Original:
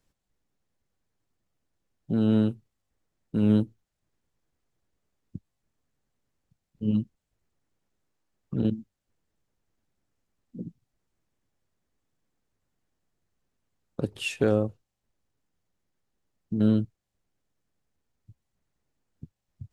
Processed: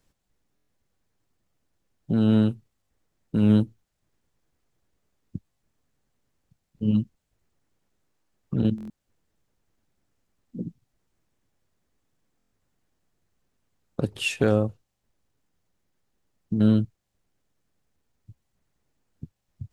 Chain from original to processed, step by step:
dynamic equaliser 380 Hz, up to −4 dB, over −34 dBFS, Q 0.94
buffer that repeats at 0:00.55/0:08.76/0:12.38, samples 1,024, times 5
level +4.5 dB

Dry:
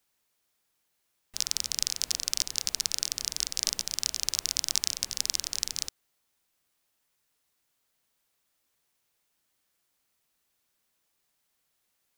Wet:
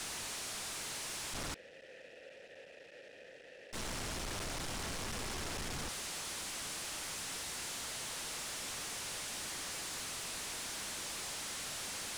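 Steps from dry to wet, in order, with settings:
sign of each sample alone
low-pass filter 10,000 Hz 24 dB per octave
leveller curve on the samples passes 1
0:01.54–0:03.73: formant filter e
level that may rise only so fast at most 430 dB per second
level −4 dB

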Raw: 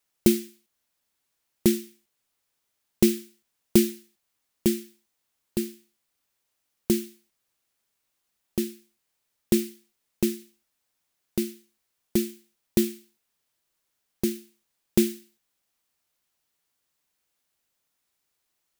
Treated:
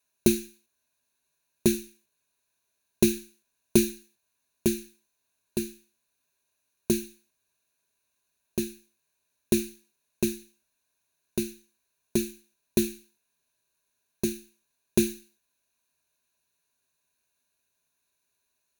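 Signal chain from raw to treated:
EQ curve with evenly spaced ripples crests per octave 1.5, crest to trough 12 dB
level −2 dB

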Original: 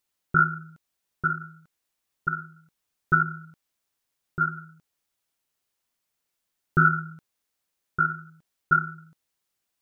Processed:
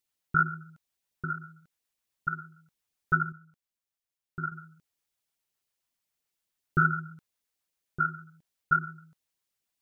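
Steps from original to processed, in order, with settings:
auto-filter notch sine 7.3 Hz 240–1,500 Hz
0:03.32–0:04.52: expander for the loud parts 1.5 to 1, over −41 dBFS
level −3.5 dB

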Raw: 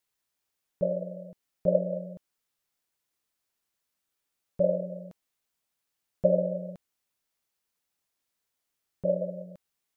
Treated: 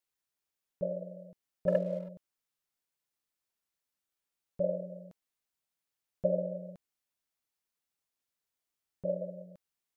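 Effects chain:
0:01.67–0:02.09: leveller curve on the samples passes 1
level −6.5 dB

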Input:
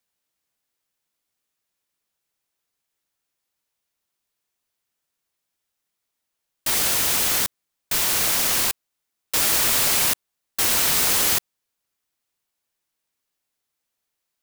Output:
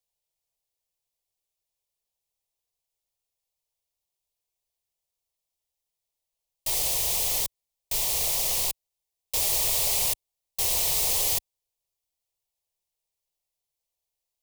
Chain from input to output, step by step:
low-shelf EQ 69 Hz +9.5 dB
phaser with its sweep stopped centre 610 Hz, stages 4
level −4.5 dB

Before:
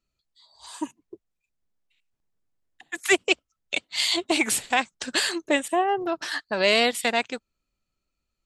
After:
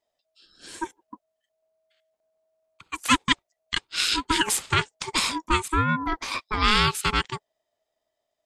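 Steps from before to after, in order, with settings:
ring modulation 640 Hz
level +3 dB

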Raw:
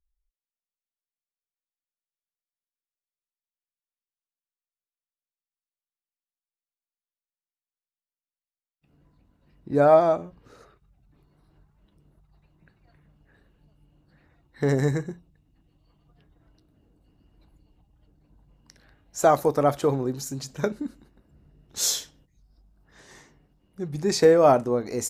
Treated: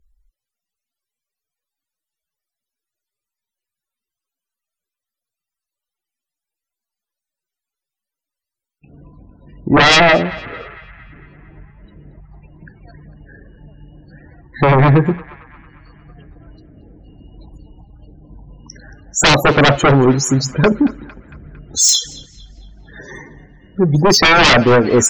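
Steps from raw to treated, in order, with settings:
tape wow and flutter 19 cents
spectral peaks only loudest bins 32
sine wavefolder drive 16 dB, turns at −6 dBFS
feedback echo with a band-pass in the loop 227 ms, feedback 60%, band-pass 1,700 Hz, level −16 dB

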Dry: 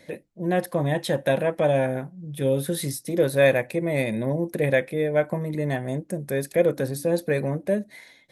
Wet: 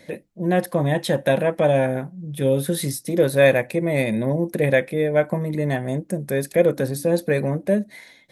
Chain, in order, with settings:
parametric band 200 Hz +3 dB 0.4 octaves
level +3 dB

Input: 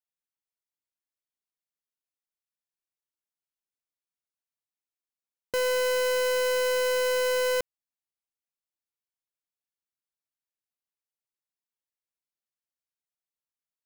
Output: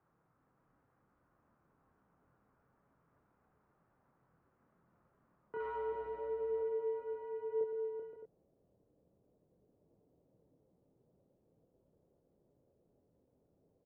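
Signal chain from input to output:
brickwall limiter −35 dBFS, peak gain reduction 10 dB
background noise brown −61 dBFS
single-sideband voice off tune −62 Hz 160–3,300 Hz
0:05.60–0:06.61: power curve on the samples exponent 0.5
multi-voice chorus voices 6, 0.42 Hz, delay 27 ms, depth 4 ms
multi-tap delay 116/385/523/615 ms −10.5/−6/−10/−11 dB
low-pass filter sweep 1,300 Hz → 520 Hz, 0:05.38–0:06.39
level −2 dB

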